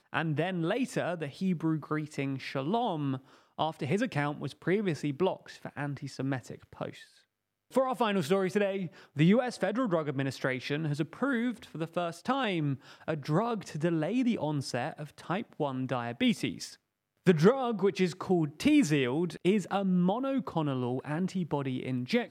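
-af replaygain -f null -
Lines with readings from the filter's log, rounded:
track_gain = +10.6 dB
track_peak = 0.201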